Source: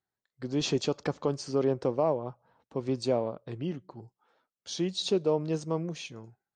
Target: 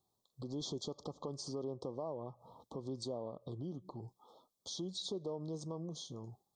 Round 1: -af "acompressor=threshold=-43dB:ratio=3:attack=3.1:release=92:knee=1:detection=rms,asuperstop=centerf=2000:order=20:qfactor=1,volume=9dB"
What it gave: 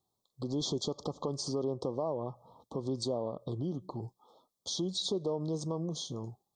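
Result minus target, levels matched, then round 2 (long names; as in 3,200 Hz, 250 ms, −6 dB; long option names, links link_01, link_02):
downward compressor: peak gain reduction −7.5 dB
-af "acompressor=threshold=-54.5dB:ratio=3:attack=3.1:release=92:knee=1:detection=rms,asuperstop=centerf=2000:order=20:qfactor=1,volume=9dB"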